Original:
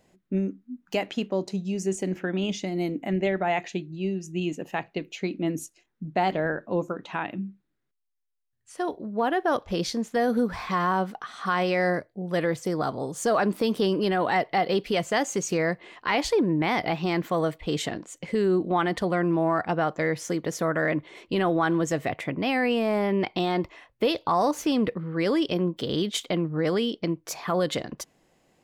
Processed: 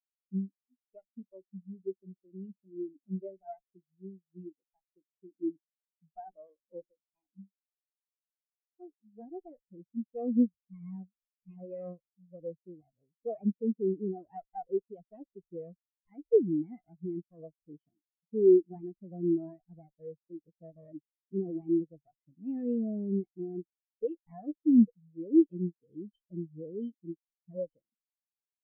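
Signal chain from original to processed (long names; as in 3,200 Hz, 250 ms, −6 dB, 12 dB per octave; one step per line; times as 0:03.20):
lower of the sound and its delayed copy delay 0.37 ms
every bin expanded away from the loudest bin 4 to 1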